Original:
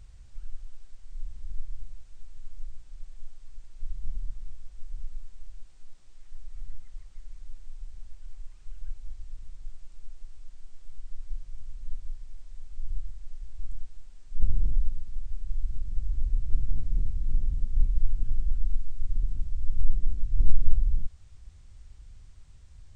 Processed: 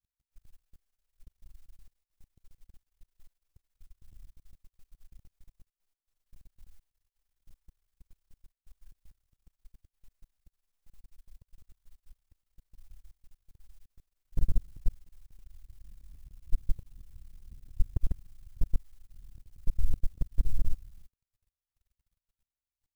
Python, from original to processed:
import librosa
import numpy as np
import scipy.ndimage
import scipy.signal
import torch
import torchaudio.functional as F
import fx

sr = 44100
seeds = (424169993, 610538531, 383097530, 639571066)

y = fx.level_steps(x, sr, step_db=15)
y = fx.quant_dither(y, sr, seeds[0], bits=10, dither='triangular')
y = fx.power_curve(y, sr, exponent=2.0)